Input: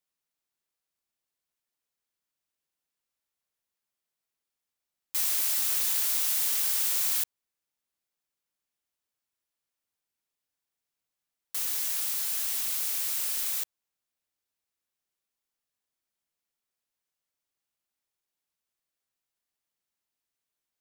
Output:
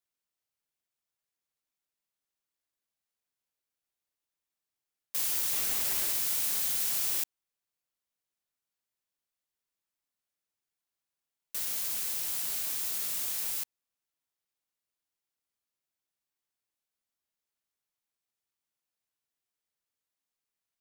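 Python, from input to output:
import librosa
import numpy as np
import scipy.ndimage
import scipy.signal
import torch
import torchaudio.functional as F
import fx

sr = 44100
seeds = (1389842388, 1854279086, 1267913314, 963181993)

y = fx.peak_eq(x, sr, hz=370.0, db=11.0, octaves=2.8, at=(5.53, 6.13))
y = fx.ring_lfo(y, sr, carrier_hz=1300.0, swing_pct=25, hz=5.2)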